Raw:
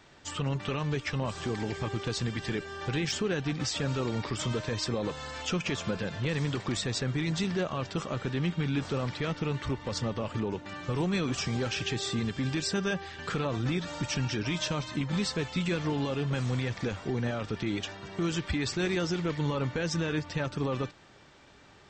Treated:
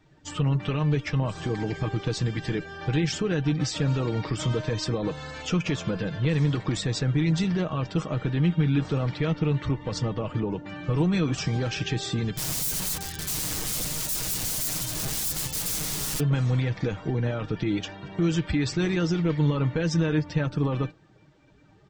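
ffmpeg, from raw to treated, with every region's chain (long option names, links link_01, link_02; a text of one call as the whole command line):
ffmpeg -i in.wav -filter_complex "[0:a]asettb=1/sr,asplit=3[link_01][link_02][link_03];[link_01]atrim=end=12.374[link_04];[link_02]atrim=start=12.37:end=16.2,asetpts=PTS-STARTPTS,afade=type=in:duration=0.004:curve=qsin,afade=type=out:start_time=3.826:duration=0.004:curve=qsin,aeval=exprs='(mod(56.2*val(0)+1,2)-1)/56.2':channel_layout=same,bass=frequency=250:gain=10,treble=frequency=4000:gain=13[link_05];[link_03]atrim=start=16.196[link_06];[link_04][link_05]acrossfade=duration=0.004:curve1=hsin:curve2=qsin[link_07];[link_07][link_06]acrossfade=duration=0.004:curve1=qsin:curve2=hsin,afftdn=noise_reduction=12:noise_floor=-50,lowshelf=frequency=420:gain=6,aecho=1:1:6.4:0.43" out.wav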